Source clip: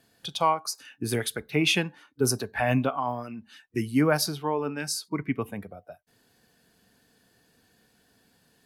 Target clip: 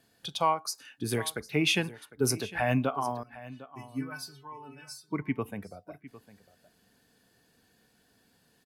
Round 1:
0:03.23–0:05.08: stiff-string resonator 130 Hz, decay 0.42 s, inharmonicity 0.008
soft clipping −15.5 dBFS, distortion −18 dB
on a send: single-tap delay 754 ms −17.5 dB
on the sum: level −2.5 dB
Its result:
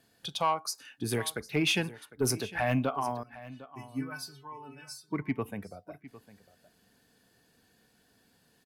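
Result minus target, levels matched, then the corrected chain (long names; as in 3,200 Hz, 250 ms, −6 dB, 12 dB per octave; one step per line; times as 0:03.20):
soft clipping: distortion +20 dB
0:03.23–0:05.08: stiff-string resonator 130 Hz, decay 0.42 s, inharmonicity 0.008
soft clipping −4 dBFS, distortion −37 dB
on a send: single-tap delay 754 ms −17.5 dB
on the sum: level −2.5 dB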